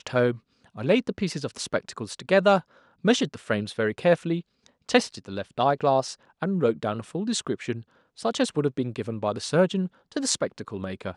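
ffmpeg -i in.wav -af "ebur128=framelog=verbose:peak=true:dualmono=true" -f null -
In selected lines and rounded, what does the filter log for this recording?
Integrated loudness:
  I:         -23.1 LUFS
  Threshold: -33.4 LUFS
Loudness range:
  LRA:         2.6 LU
  Threshold: -43.2 LUFS
  LRA low:   -24.7 LUFS
  LRA high:  -22.0 LUFS
True peak:
  Peak:       -3.9 dBFS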